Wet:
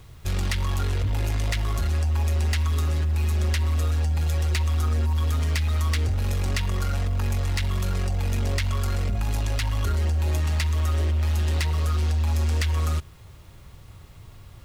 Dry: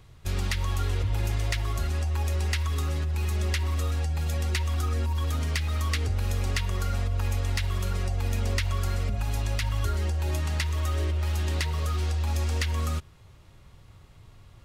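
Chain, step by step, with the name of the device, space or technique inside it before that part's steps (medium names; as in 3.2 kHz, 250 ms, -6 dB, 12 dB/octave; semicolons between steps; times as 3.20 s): open-reel tape (saturation -25 dBFS, distortion -16 dB; peaking EQ 69 Hz +2.5 dB; white noise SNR 41 dB); trim +5 dB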